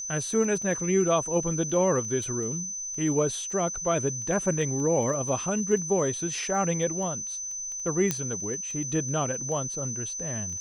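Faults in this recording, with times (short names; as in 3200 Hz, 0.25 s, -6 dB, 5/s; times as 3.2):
crackle 10/s -34 dBFS
tone 6100 Hz -32 dBFS
8.11 pop -10 dBFS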